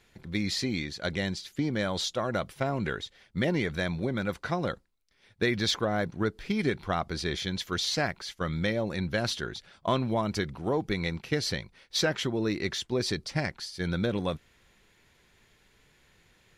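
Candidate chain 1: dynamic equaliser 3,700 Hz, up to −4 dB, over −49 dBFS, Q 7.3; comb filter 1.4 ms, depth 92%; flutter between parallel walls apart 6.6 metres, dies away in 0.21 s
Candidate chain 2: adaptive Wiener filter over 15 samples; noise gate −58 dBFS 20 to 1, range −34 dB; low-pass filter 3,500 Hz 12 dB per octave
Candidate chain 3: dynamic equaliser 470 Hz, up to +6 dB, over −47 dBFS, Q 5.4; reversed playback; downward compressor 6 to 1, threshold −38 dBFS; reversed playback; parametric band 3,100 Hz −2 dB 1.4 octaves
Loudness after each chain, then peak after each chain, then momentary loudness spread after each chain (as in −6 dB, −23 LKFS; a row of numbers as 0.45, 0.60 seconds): −28.5, −32.0, −42.0 LKFS; −10.5, −14.5, −26.0 dBFS; 6, 7, 4 LU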